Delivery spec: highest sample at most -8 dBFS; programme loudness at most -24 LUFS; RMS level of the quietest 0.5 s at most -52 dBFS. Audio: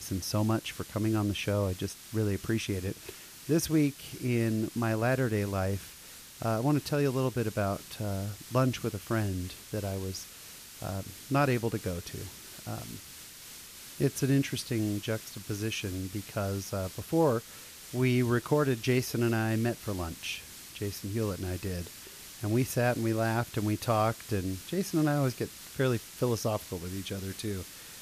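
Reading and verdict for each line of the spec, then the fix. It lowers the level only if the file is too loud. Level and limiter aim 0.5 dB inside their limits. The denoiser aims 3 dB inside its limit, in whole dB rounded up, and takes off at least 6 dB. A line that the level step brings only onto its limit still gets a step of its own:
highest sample -13.5 dBFS: OK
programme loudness -31.5 LUFS: OK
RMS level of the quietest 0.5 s -49 dBFS: fail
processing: denoiser 6 dB, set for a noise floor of -49 dBFS

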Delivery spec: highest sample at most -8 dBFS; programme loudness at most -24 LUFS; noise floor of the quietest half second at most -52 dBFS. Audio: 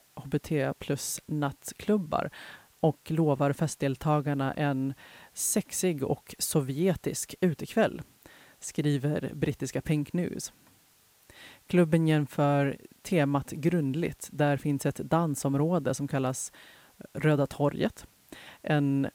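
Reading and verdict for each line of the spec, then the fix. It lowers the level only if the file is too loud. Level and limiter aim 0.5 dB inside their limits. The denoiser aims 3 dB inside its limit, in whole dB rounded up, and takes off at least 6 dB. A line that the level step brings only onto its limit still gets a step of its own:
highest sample -11.5 dBFS: OK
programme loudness -29.0 LUFS: OK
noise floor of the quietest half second -63 dBFS: OK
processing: none

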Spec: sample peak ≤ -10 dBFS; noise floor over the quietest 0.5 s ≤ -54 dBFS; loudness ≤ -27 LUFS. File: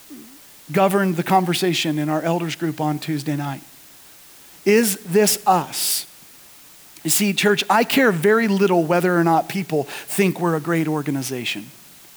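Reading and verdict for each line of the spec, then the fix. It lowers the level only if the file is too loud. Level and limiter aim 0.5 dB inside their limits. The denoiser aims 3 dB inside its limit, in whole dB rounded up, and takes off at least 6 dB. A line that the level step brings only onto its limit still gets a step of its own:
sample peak -5.5 dBFS: fail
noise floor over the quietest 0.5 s -46 dBFS: fail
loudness -19.5 LUFS: fail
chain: denoiser 6 dB, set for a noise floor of -46 dBFS; gain -8 dB

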